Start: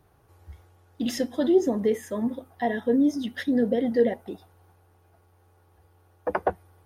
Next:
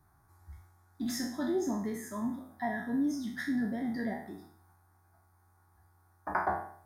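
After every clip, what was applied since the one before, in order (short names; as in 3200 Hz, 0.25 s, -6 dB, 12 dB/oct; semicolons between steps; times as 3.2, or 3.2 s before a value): spectral trails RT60 0.56 s; low shelf 330 Hz -3 dB; fixed phaser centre 1200 Hz, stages 4; gain -3 dB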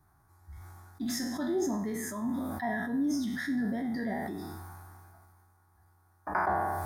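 sustainer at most 23 dB/s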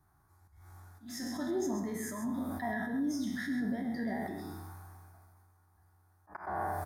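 auto swell 0.271 s; echo 0.132 s -8 dB; gain -3.5 dB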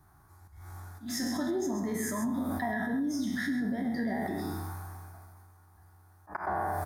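compressor, threshold -37 dBFS, peak gain reduction 8 dB; gain +8.5 dB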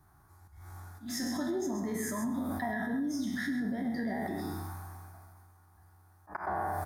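reverb RT60 0.35 s, pre-delay 98 ms, DRR 17 dB; gain -2 dB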